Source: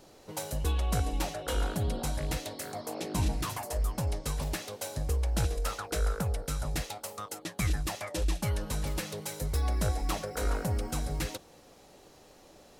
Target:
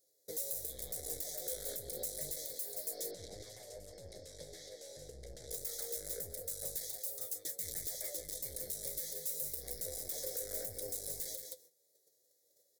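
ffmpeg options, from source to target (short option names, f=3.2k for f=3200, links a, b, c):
-filter_complex "[0:a]agate=range=-25dB:threshold=-51dB:ratio=16:detection=peak,aeval=exprs='(tanh(50.1*val(0)+0.7)-tanh(0.7))/50.1':c=same,asuperstop=centerf=2700:order=8:qfactor=2.3,aemphasis=mode=production:type=bsi,aecho=1:1:172:0.355,alimiter=level_in=8.5dB:limit=-24dB:level=0:latency=1:release=313,volume=-8.5dB,aexciter=amount=1.4:drive=9.9:freq=2k,firequalizer=gain_entry='entry(130,0);entry(220,-8);entry(500,10);entry(1000,-25);entry(1700,-8)':delay=0.05:min_phase=1,flanger=delay=9.3:depth=5.3:regen=46:speed=0.28:shape=triangular,asettb=1/sr,asplit=3[a][b][c];[a]atrim=end=3.114[d];[b]atrim=start=3.11:end=5.51,asetpts=PTS-STARTPTS,afade=t=in:d=0.004:c=qsin,afade=t=out:st=2.396:d=0.004:c=qsin,lowpass=4.3k[e];[c]atrim=start=5.506[f];[d][e]acrossfade=d=0.004:c1=hsin:c2=qsin[g];[g][f]acrossfade=d=0.004:c1=qsin:c2=hsin,volume=5dB"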